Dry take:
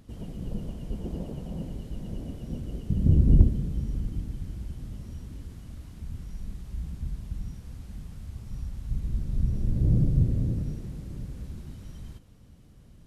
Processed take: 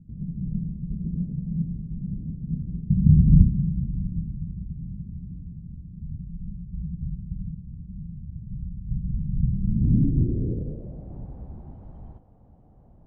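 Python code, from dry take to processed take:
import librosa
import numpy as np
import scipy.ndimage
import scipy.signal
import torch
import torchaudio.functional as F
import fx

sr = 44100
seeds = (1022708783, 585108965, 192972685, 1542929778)

y = fx.filter_sweep_lowpass(x, sr, from_hz=170.0, to_hz=780.0, start_s=9.58, end_s=11.17, q=4.4)
y = F.gain(torch.from_numpy(y), -1.0).numpy()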